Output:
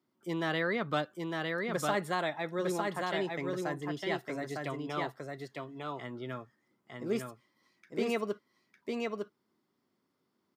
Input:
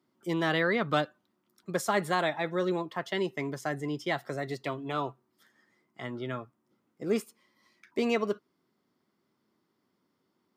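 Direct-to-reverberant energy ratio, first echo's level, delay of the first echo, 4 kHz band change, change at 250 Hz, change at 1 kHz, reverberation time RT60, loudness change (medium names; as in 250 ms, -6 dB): no reverb, -3.0 dB, 905 ms, -2.5 dB, -3.0 dB, -2.5 dB, no reverb, -3.5 dB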